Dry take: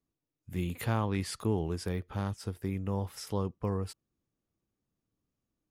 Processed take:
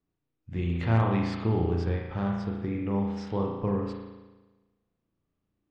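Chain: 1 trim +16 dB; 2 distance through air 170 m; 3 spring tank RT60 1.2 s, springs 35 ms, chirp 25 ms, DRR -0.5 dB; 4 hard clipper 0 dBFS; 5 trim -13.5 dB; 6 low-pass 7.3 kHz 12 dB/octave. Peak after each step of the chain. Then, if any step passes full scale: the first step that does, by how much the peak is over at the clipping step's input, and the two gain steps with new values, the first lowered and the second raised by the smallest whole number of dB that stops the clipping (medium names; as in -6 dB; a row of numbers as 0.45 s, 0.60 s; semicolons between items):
-1.5 dBFS, -2.5 dBFS, +4.0 dBFS, 0.0 dBFS, -13.5 dBFS, -13.5 dBFS; step 3, 4.0 dB; step 1 +12 dB, step 5 -9.5 dB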